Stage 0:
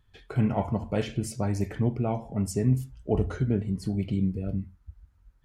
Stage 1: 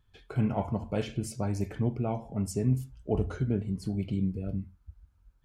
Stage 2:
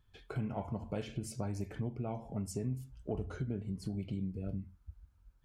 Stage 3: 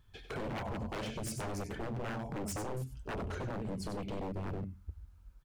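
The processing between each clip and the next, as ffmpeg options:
-af "bandreject=f=1.9k:w=9.6,volume=-3dB"
-af "acompressor=threshold=-34dB:ratio=3,volume=-1.5dB"
-af "aecho=1:1:94:0.355,aeval=exprs='0.0119*(abs(mod(val(0)/0.0119+3,4)-2)-1)':c=same,volume=5.5dB"

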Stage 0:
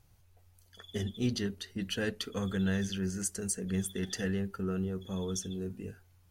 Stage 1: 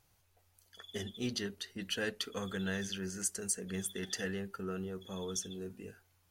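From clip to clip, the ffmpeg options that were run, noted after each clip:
-af "lowshelf=f=250:g=-12"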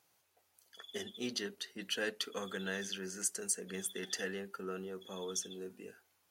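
-af "highpass=260"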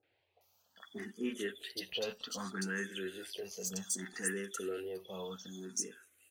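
-filter_complex "[0:a]asoftclip=type=tanh:threshold=-28dB,acrossover=split=870|3600[a][b][c];[b]adelay=30[d];[c]adelay=410[e];[a][d][e]amix=inputs=3:normalize=0,asplit=2[f][g];[g]afreqshift=0.64[h];[f][h]amix=inputs=2:normalize=1,volume=5dB"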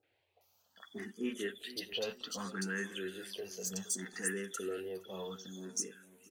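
-filter_complex "[0:a]asplit=2[a][b];[b]adelay=467,lowpass=f=1.5k:p=1,volume=-17dB,asplit=2[c][d];[d]adelay=467,lowpass=f=1.5k:p=1,volume=0.36,asplit=2[e][f];[f]adelay=467,lowpass=f=1.5k:p=1,volume=0.36[g];[a][c][e][g]amix=inputs=4:normalize=0"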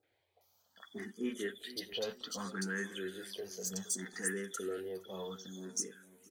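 -af "bandreject=f=2.7k:w=5.9"

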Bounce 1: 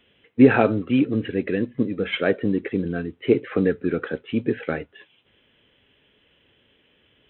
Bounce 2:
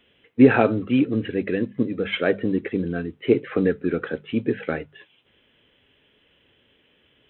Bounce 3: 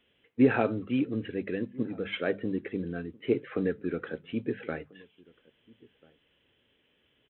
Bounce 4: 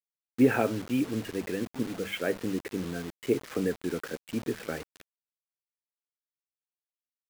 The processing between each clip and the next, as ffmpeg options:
-af "bandreject=f=50:t=h:w=6,bandreject=f=100:t=h:w=6,bandreject=f=150:t=h:w=6,bandreject=f=200:t=h:w=6"
-filter_complex "[0:a]asplit=2[a][b];[b]adelay=1341,volume=-25dB,highshelf=f=4k:g=-30.2[c];[a][c]amix=inputs=2:normalize=0,volume=-8.5dB"
-af "acrusher=bits=6:mix=0:aa=0.000001"

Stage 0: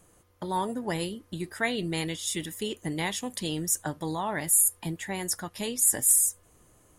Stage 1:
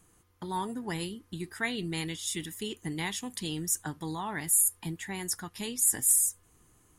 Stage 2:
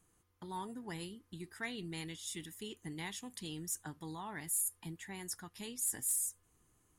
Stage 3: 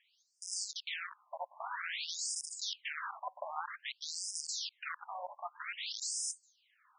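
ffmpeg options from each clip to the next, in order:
-af "equalizer=f=580:t=o:w=0.47:g=-12.5,volume=-2.5dB"
-af "asoftclip=type=tanh:threshold=-17dB,volume=-9dB"
-af "aeval=exprs='(mod(119*val(0)+1,2)-1)/119':c=same,afftfilt=real='re*between(b*sr/1024,750*pow(7000/750,0.5+0.5*sin(2*PI*0.52*pts/sr))/1.41,750*pow(7000/750,0.5+0.5*sin(2*PI*0.52*pts/sr))*1.41)':imag='im*between(b*sr/1024,750*pow(7000/750,0.5+0.5*sin(2*PI*0.52*pts/sr))/1.41,750*pow(7000/750,0.5+0.5*sin(2*PI*0.52*pts/sr))*1.41)':win_size=1024:overlap=0.75,volume=15.5dB"

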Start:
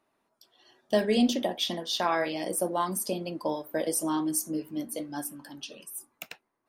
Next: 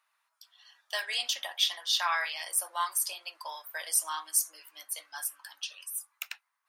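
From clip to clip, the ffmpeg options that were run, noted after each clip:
-af "highpass=f=1.1k:w=0.5412,highpass=f=1.1k:w=1.3066,volume=3.5dB"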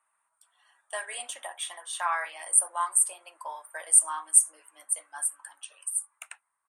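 -af "firequalizer=gain_entry='entry(930,0);entry(5000,-25);entry(8800,10);entry(14000,-26)':delay=0.05:min_phase=1,volume=3dB"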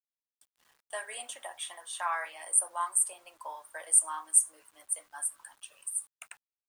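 -filter_complex "[0:a]acrossover=split=510[a][b];[a]acontrast=26[c];[c][b]amix=inputs=2:normalize=0,acrusher=bits=9:mix=0:aa=0.000001,volume=-4dB"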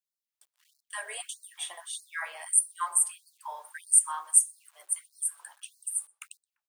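-filter_complex "[0:a]asplit=2[a][b];[b]adelay=124,lowpass=f=1.2k:p=1,volume=-15dB,asplit=2[c][d];[d]adelay=124,lowpass=f=1.2k:p=1,volume=0.29,asplit=2[e][f];[f]adelay=124,lowpass=f=1.2k:p=1,volume=0.29[g];[a][c][e][g]amix=inputs=4:normalize=0,afftfilt=real='re*gte(b*sr/1024,320*pow(4100/320,0.5+0.5*sin(2*PI*1.6*pts/sr)))':imag='im*gte(b*sr/1024,320*pow(4100/320,0.5+0.5*sin(2*PI*1.6*pts/sr)))':win_size=1024:overlap=0.75,volume=2.5dB"

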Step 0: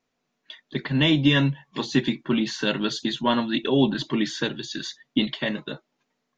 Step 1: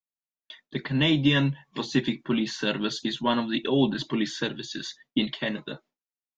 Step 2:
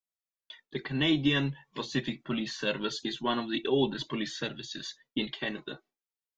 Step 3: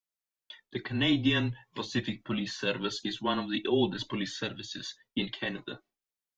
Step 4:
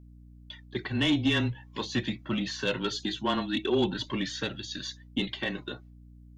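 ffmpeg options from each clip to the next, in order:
-af "agate=range=-33dB:threshold=-47dB:ratio=3:detection=peak,volume=-2.5dB"
-af "flanger=delay=1.5:depth=1.2:regen=36:speed=0.44:shape=sinusoidal"
-af "afreqshift=-20"
-af "aeval=exprs='val(0)+0.00251*(sin(2*PI*60*n/s)+sin(2*PI*2*60*n/s)/2+sin(2*PI*3*60*n/s)/3+sin(2*PI*4*60*n/s)/4+sin(2*PI*5*60*n/s)/5)':c=same,asoftclip=type=tanh:threshold=-19.5dB,volume=2.5dB"

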